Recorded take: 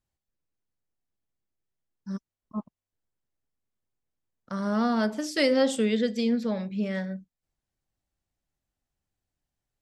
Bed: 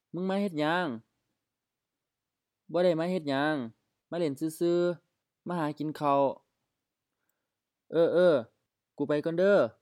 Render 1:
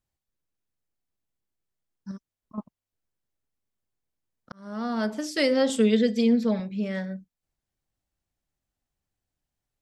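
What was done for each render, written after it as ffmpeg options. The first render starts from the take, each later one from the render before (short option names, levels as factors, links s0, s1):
-filter_complex "[0:a]asettb=1/sr,asplit=3[s0][s1][s2];[s0]atrim=end=2.114[s3];[s1]atrim=start=2.11:end=2.58,asetpts=PTS-STARTPTS,afade=t=in:d=0.004:c=qsin,afade=t=out:st=0.466:d=0.004:c=qsin,acompressor=threshold=0.0112:ratio=2.5:attack=3.2:release=140:knee=1:detection=peak[s4];[s2]atrim=start=2.576[s5];[s3][s4]acrossfade=d=0.004:c1=hsin:c2=qsin[s6];[s6][s5]acrossfade=d=0.004:c1=qsin:c2=hsin,asettb=1/sr,asplit=3[s7][s8][s9];[s7]atrim=end=5.694[s10];[s8]atrim=start=5.69:end=6.6,asetpts=PTS-STARTPTS,afade=t=in:d=0.004:c=qsin,afade=t=out:st=0.906:d=0.004:c=qsin,aecho=1:1:4.5:0.71,atrim=end_sample=40131[s11];[s9]atrim=start=6.596[s12];[s10][s11]acrossfade=d=0.004:c1=hsin:c2=qsin[s13];[s13][s12]acrossfade=d=0.004:c1=qsin:c2=hsin,asplit=2[s14][s15];[s14]atrim=end=4.52,asetpts=PTS-STARTPTS,afade=t=out:st=4.516:d=0.004:c=hsin[s16];[s15]atrim=start=4.52,asetpts=PTS-STARTPTS,afade=t=in:d=0.6[s17];[s16][s17]concat=n=2:v=0:a=1"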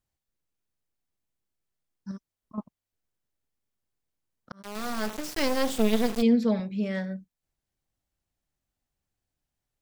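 -filter_complex "[0:a]asplit=3[s0][s1][s2];[s0]afade=t=out:st=4.61:d=0.02[s3];[s1]acrusher=bits=3:dc=4:mix=0:aa=0.000001,afade=t=in:st=4.61:d=0.02,afade=t=out:st=6.21:d=0.02[s4];[s2]afade=t=in:st=6.21:d=0.02[s5];[s3][s4][s5]amix=inputs=3:normalize=0"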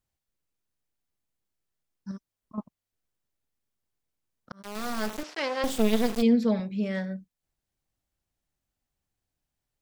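-filter_complex "[0:a]asettb=1/sr,asplit=3[s0][s1][s2];[s0]atrim=end=5.234[s3];[s1]atrim=start=5.23:end=5.64,asetpts=PTS-STARTPTS,afade=t=in:d=0.004:c=qsin,afade=t=out:st=0.406:d=0.004:c=qsin,highpass=480,lowpass=3800[s4];[s2]atrim=start=5.636[s5];[s3][s4]acrossfade=d=0.004:c1=hsin:c2=qsin[s6];[s6][s5]acrossfade=d=0.004:c1=qsin:c2=hsin"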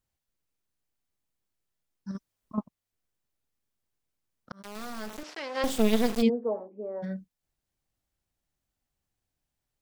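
-filter_complex "[0:a]asplit=3[s0][s1][s2];[s0]afade=t=out:st=4.61:d=0.02[s3];[s1]acompressor=threshold=0.0126:ratio=2:attack=3.2:release=140:knee=1:detection=peak,afade=t=in:st=4.61:d=0.02,afade=t=out:st=5.54:d=0.02[s4];[s2]afade=t=in:st=5.54:d=0.02[s5];[s3][s4][s5]amix=inputs=3:normalize=0,asplit=3[s6][s7][s8];[s6]afade=t=out:st=6.28:d=0.02[s9];[s7]asuperpass=centerf=570:order=8:qfactor=0.74,afade=t=in:st=6.28:d=0.02,afade=t=out:st=7.02:d=0.02[s10];[s8]afade=t=in:st=7.02:d=0.02[s11];[s9][s10][s11]amix=inputs=3:normalize=0,asplit=3[s12][s13][s14];[s12]atrim=end=2.152[s15];[s13]atrim=start=2.148:end=2.592,asetpts=PTS-STARTPTS,volume=1.68[s16];[s14]atrim=start=2.588[s17];[s15][s16]acrossfade=d=0.004:c1=hsin:c2=hsin[s18];[s18][s17]acrossfade=d=0.004:c1=hsin:c2=hsin"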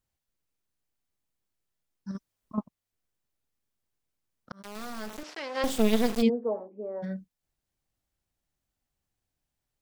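-af anull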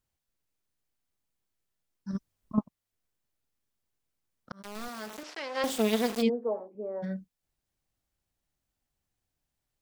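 -filter_complex "[0:a]asettb=1/sr,asplit=3[s0][s1][s2];[s0]atrim=end=2.134[s3];[s1]atrim=start=2.13:end=2.59,asetpts=PTS-STARTPTS,afade=t=in:d=0.004:c=qsin,afade=t=out:st=0.456:d=0.004:c=qsin,lowshelf=f=230:g=9[s4];[s2]atrim=start=2.586[s5];[s3][s4]acrossfade=d=0.004:c1=hsin:c2=qsin[s6];[s6][s5]acrossfade=d=0.004:c1=qsin:c2=hsin,asettb=1/sr,asplit=3[s7][s8][s9];[s7]atrim=end=4.884[s10];[s8]atrim=start=4.88:end=6.75,asetpts=PTS-STARTPTS,afade=t=in:d=0.004:c=qsin,afade=t=out:st=1.866:d=0.004:c=qsin,highpass=f=260:p=1[s11];[s9]atrim=start=6.746[s12];[s10][s11]acrossfade=d=0.004:c1=hsin:c2=qsin[s13];[s13][s12]acrossfade=d=0.004:c1=qsin:c2=hsin"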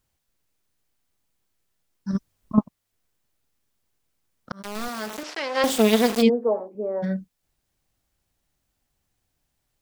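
-af "volume=2.66"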